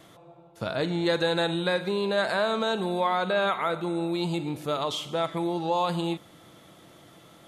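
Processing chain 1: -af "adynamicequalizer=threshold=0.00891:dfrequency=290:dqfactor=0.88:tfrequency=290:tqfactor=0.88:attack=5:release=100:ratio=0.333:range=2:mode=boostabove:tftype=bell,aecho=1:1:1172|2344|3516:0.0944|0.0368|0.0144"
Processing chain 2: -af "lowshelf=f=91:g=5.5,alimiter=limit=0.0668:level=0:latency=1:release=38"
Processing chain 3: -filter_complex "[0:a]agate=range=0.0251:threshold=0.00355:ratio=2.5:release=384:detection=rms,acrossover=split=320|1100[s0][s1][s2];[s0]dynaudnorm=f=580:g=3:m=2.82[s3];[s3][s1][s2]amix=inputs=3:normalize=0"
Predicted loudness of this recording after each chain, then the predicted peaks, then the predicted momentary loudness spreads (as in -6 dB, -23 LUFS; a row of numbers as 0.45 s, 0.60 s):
-25.5 LUFS, -32.0 LUFS, -24.0 LUFS; -10.5 dBFS, -23.5 dBFS, -10.5 dBFS; 20 LU, 20 LU, 5 LU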